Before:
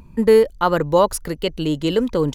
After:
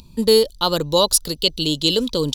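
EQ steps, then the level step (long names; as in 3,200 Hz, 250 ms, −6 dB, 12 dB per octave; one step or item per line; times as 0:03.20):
high shelf with overshoot 2,700 Hz +12 dB, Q 3
notch filter 760 Hz, Q 13
notch filter 6,400 Hz, Q 17
−2.0 dB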